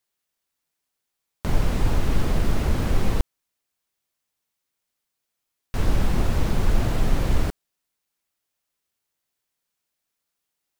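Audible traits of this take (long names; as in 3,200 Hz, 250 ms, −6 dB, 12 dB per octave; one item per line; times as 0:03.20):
background noise floor −82 dBFS
spectral slope −6.0 dB per octave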